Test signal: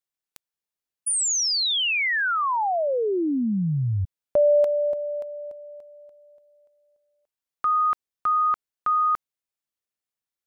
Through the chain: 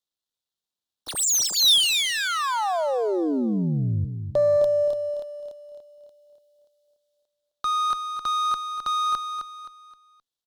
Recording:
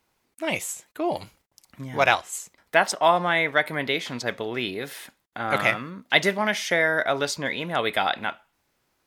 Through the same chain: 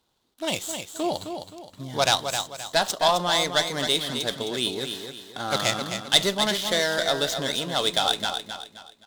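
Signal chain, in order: median filter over 9 samples; valve stage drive 11 dB, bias 0.25; resonant high shelf 2.9 kHz +8.5 dB, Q 3; on a send: feedback delay 262 ms, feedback 36%, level -7.5 dB

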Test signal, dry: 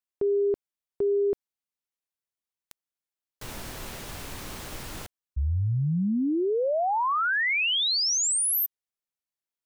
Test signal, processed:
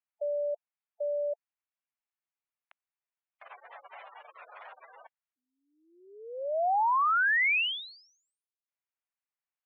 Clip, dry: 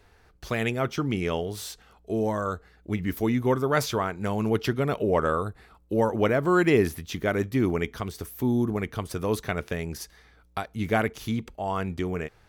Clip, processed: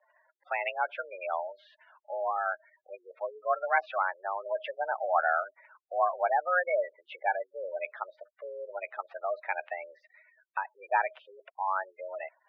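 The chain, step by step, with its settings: spectral gate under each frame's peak -15 dB strong; mistuned SSB +180 Hz 480–2600 Hz

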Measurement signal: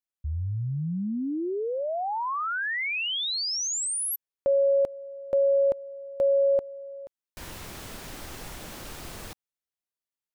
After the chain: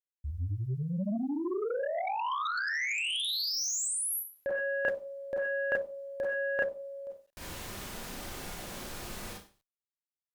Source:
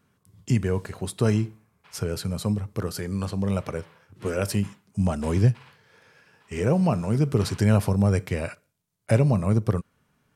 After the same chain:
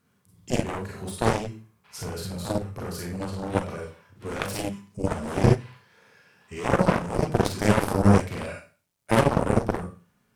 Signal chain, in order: Schroeder reverb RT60 0.37 s, combs from 31 ms, DRR -2 dB; bit crusher 12-bit; Chebyshev shaper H 7 -12 dB, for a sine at -3.5 dBFS; trim -2 dB

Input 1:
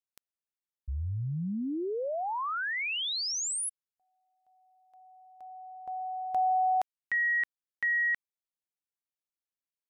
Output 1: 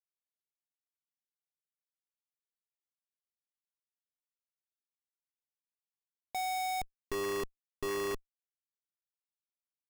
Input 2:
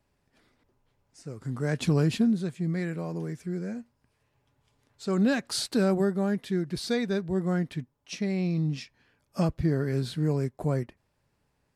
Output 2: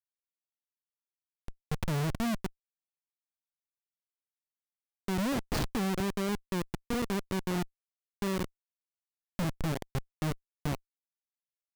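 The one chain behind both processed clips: Schmitt trigger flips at -24.5 dBFS

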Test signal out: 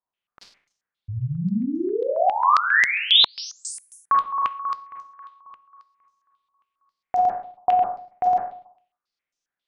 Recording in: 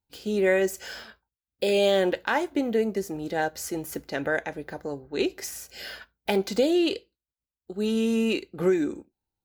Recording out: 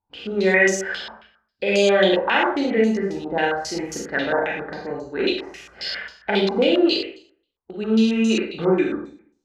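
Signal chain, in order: Schroeder reverb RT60 0.55 s, combs from 32 ms, DRR -2.5 dB; step-sequenced low-pass 7.4 Hz 990–6100 Hz

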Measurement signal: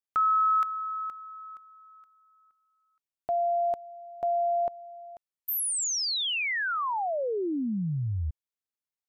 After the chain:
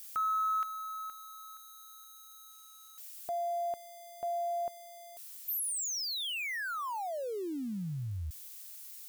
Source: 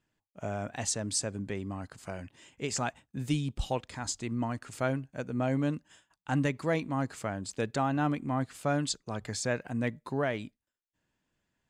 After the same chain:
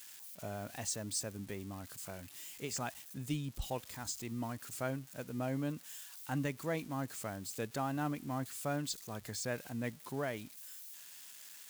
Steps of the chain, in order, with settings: zero-crossing glitches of -33.5 dBFS; trim -7.5 dB

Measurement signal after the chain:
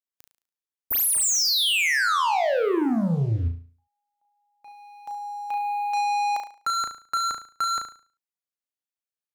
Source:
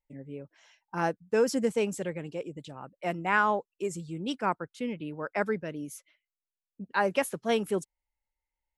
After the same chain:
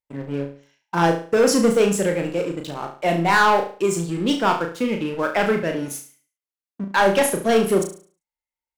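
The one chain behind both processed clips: high-pass 130 Hz 6 dB/octave; waveshaping leveller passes 3; on a send: flutter echo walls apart 6.1 m, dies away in 0.41 s; on the sum: trim +1.5 dB

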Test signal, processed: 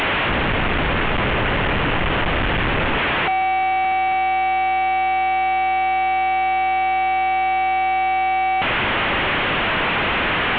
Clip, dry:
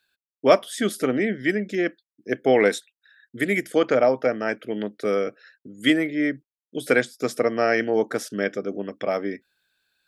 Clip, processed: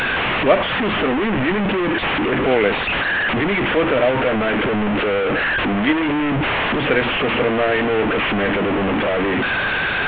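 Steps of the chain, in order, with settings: one-bit delta coder 16 kbps, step -13.5 dBFS; trim +1 dB

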